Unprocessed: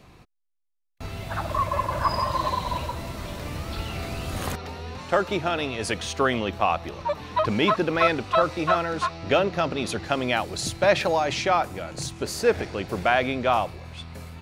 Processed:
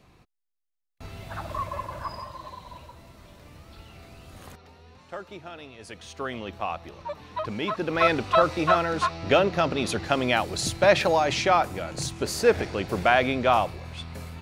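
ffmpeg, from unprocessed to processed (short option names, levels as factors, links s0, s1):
-af "volume=3.35,afade=t=out:st=1.56:d=0.8:silence=0.334965,afade=t=in:st=5.87:d=0.63:silence=0.421697,afade=t=in:st=7.72:d=0.43:silence=0.354813"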